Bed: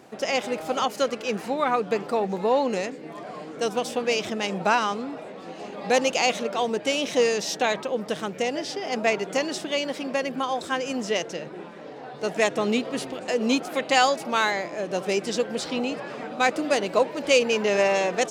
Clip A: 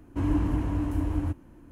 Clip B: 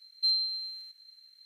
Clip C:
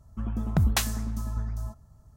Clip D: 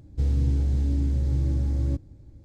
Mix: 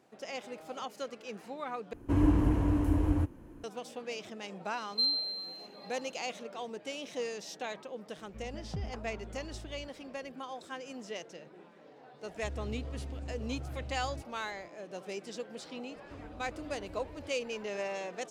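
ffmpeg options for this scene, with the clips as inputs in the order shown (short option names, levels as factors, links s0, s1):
-filter_complex "[1:a]asplit=2[s0][s1];[0:a]volume=0.168[s2];[s0]equalizer=f=460:t=o:w=0.69:g=5[s3];[3:a]lowpass=f=1200:w=0.5412,lowpass=f=1200:w=1.3066[s4];[s1]acompressor=threshold=0.00631:ratio=2.5:attack=56:release=48:knee=1:detection=peak[s5];[s2]asplit=2[s6][s7];[s6]atrim=end=1.934[s8];[s3]atrim=end=1.71,asetpts=PTS-STARTPTS,volume=0.944[s9];[s7]atrim=start=3.636[s10];[2:a]atrim=end=1.45,asetpts=PTS-STARTPTS,volume=0.794,afade=t=in:d=0.004:c=hsin,afade=t=out:st=1.446:d=0.004:c=hsin,adelay=4750[s11];[s4]atrim=end=2.16,asetpts=PTS-STARTPTS,volume=0.168,afade=t=in:d=0.004:c=hsin,afade=t=out:st=2.156:d=0.004:c=hsin,adelay=8170[s12];[4:a]atrim=end=2.44,asetpts=PTS-STARTPTS,volume=0.133,afade=t=in:d=0.004:c=hsin,afade=t=out:st=2.436:d=0.004:c=hsin,adelay=12250[s13];[s5]atrim=end=1.71,asetpts=PTS-STARTPTS,volume=0.211,afade=t=in:d=0.004:c=hsin,afade=t=out:st=1.706:d=0.004:c=hsin,adelay=15950[s14];[s8][s9]acrossfade=d=0.004:c1=hsin:c2=hsin[s15];[s15][s10]acrossfade=d=0.004:c1=hsin:c2=hsin[s16];[s16][s11][s12][s13][s14]amix=inputs=5:normalize=0"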